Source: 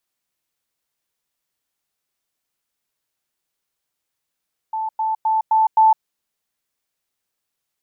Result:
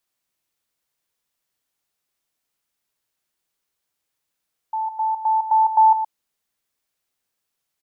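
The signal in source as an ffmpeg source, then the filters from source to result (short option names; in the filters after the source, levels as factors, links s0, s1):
-f lavfi -i "aevalsrc='pow(10,(-21+3*floor(t/0.26))/20)*sin(2*PI*879*t)*clip(min(mod(t,0.26),0.16-mod(t,0.26))/0.005,0,1)':d=1.3:s=44100"
-af "aecho=1:1:118:0.299"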